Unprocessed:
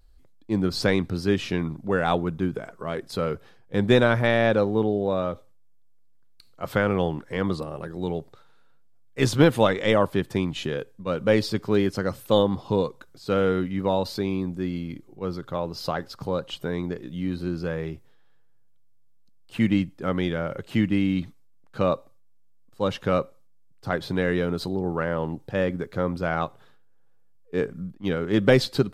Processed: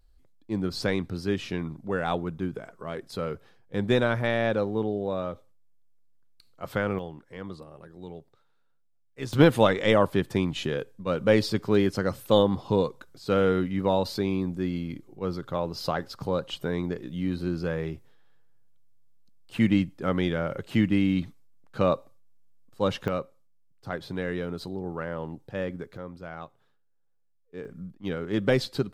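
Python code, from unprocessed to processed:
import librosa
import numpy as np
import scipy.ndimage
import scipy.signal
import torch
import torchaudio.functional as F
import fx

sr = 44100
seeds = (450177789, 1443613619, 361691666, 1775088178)

y = fx.gain(x, sr, db=fx.steps((0.0, -5.0), (6.99, -13.0), (9.33, -0.5), (23.08, -7.0), (25.97, -14.0), (27.65, -5.5)))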